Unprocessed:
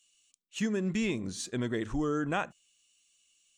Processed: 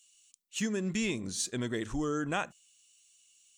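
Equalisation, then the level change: treble shelf 3.9 kHz +10 dB; -2.0 dB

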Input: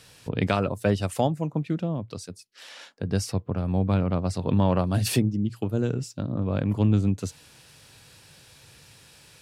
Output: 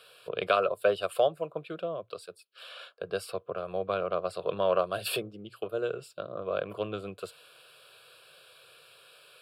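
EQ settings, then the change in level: high-pass 490 Hz 12 dB/octave; treble shelf 3 kHz -8 dB; static phaser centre 1.3 kHz, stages 8; +5.0 dB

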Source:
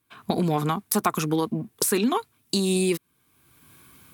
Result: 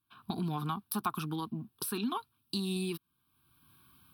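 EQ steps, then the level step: static phaser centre 2 kHz, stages 6; -8.0 dB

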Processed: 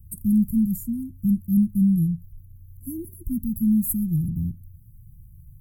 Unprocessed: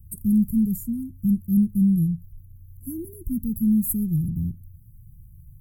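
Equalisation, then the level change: brick-wall FIR band-stop 370–1800 Hz; 0.0 dB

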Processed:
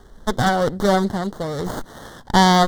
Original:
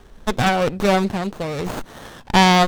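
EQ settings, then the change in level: Butterworth band-stop 2.5 kHz, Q 2; 0.0 dB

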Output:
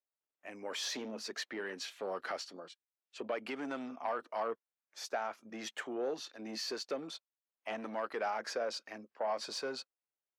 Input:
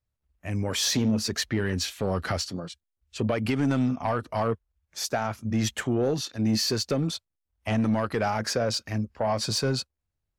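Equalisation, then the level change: Bessel high-pass 470 Hz, order 4; low-pass 2.6 kHz 6 dB/octave; -6.5 dB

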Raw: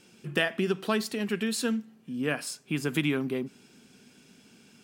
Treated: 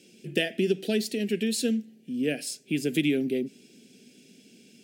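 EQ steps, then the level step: high-pass 250 Hz 12 dB/octave; Butterworth band-stop 1.1 kHz, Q 0.68; bass shelf 340 Hz +6.5 dB; +2.0 dB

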